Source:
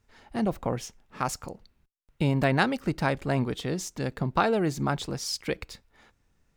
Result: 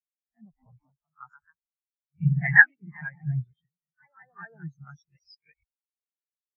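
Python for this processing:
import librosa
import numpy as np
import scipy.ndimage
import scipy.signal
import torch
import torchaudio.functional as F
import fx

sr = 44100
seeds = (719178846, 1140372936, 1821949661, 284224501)

y = fx.spec_swells(x, sr, rise_s=0.35)
y = fx.comb_fb(y, sr, f0_hz=240.0, decay_s=0.19, harmonics='all', damping=0.0, mix_pct=70, at=(3.65, 4.41), fade=0.02)
y = fx.echo_pitch(y, sr, ms=260, semitones=2, count=2, db_per_echo=-3.0)
y = fx.graphic_eq(y, sr, hz=(250, 500, 2000), db=(-10, -9, 7))
y = fx.spectral_expand(y, sr, expansion=4.0)
y = y * 10.0 ** (2.0 / 20.0)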